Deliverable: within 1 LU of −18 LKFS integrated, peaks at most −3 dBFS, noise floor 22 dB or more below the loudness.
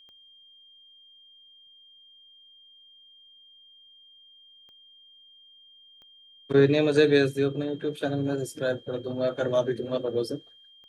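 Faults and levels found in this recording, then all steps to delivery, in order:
number of clicks 4; interfering tone 3,200 Hz; level of the tone −52 dBFS; integrated loudness −26.0 LKFS; sample peak −8.0 dBFS; target loudness −18.0 LKFS
→ click removal
notch filter 3,200 Hz, Q 30
level +8 dB
brickwall limiter −3 dBFS

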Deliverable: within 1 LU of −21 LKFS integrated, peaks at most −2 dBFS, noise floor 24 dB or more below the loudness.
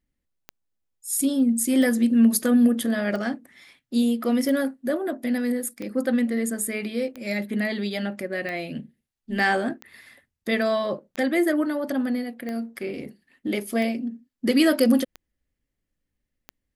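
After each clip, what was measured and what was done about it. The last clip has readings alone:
number of clicks 13; integrated loudness −24.0 LKFS; sample peak −7.5 dBFS; target loudness −21.0 LKFS
→ click removal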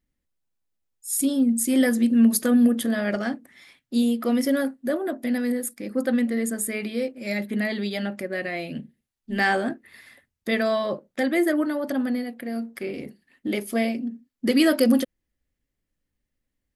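number of clicks 0; integrated loudness −24.0 LKFS; sample peak −7.5 dBFS; target loudness −21.0 LKFS
→ level +3 dB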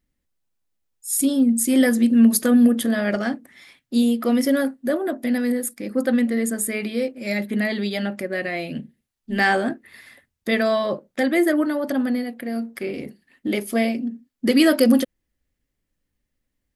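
integrated loudness −21.0 LKFS; sample peak −4.5 dBFS; background noise floor −79 dBFS

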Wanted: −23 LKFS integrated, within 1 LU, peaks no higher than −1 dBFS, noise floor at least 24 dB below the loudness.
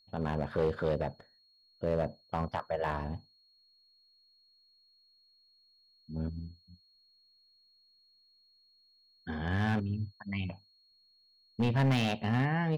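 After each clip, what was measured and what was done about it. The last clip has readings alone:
share of clipped samples 0.7%; peaks flattened at −22.5 dBFS; interfering tone 4,300 Hz; level of the tone −64 dBFS; integrated loudness −33.5 LKFS; sample peak −22.5 dBFS; target loudness −23.0 LKFS
→ clipped peaks rebuilt −22.5 dBFS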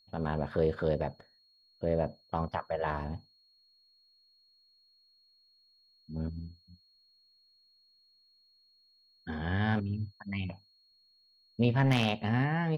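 share of clipped samples 0.0%; interfering tone 4,300 Hz; level of the tone −64 dBFS
→ notch filter 4,300 Hz, Q 30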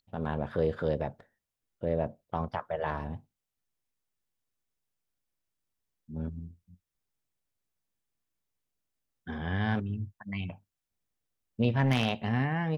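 interfering tone none found; integrated loudness −32.5 LKFS; sample peak −13.5 dBFS; target loudness −23.0 LKFS
→ level +9.5 dB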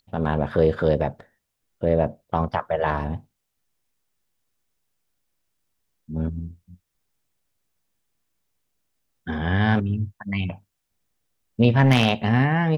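integrated loudness −23.0 LKFS; sample peak −4.0 dBFS; background noise floor −78 dBFS

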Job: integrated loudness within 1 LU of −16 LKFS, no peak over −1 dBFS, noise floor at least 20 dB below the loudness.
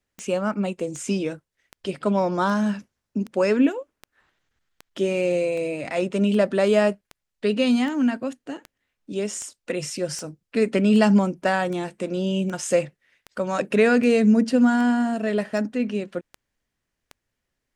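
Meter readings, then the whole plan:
number of clicks 23; integrated loudness −23.0 LKFS; sample peak −5.0 dBFS; target loudness −16.0 LKFS
→ click removal
level +7 dB
brickwall limiter −1 dBFS

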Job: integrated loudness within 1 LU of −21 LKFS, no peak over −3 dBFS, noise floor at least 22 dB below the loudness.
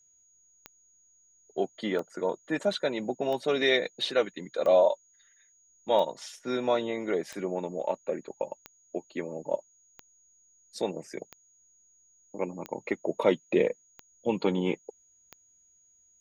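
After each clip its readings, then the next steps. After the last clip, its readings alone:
number of clicks 12; interfering tone 6,700 Hz; level of the tone −61 dBFS; integrated loudness −30.0 LKFS; sample peak −9.0 dBFS; target loudness −21.0 LKFS
→ click removal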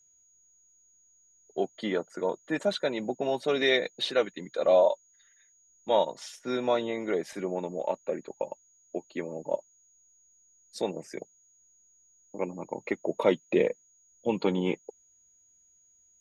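number of clicks 0; interfering tone 6,700 Hz; level of the tone −61 dBFS
→ notch filter 6,700 Hz, Q 30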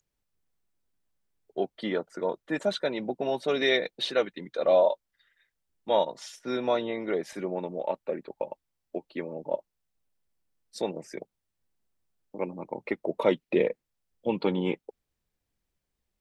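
interfering tone none found; integrated loudness −29.5 LKFS; sample peak −9.0 dBFS; target loudness −21.0 LKFS
→ level +8.5 dB
brickwall limiter −3 dBFS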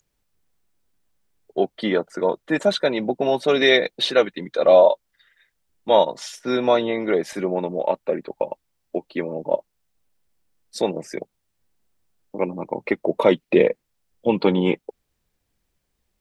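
integrated loudness −21.5 LKFS; sample peak −3.0 dBFS; background noise floor −75 dBFS

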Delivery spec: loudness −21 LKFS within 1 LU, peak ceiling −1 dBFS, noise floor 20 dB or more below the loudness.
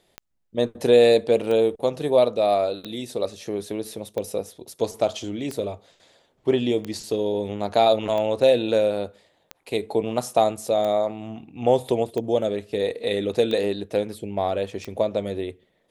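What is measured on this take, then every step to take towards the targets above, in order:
number of clicks 12; integrated loudness −23.5 LKFS; sample peak −5.0 dBFS; target loudness −21.0 LKFS
→ click removal
level +2.5 dB

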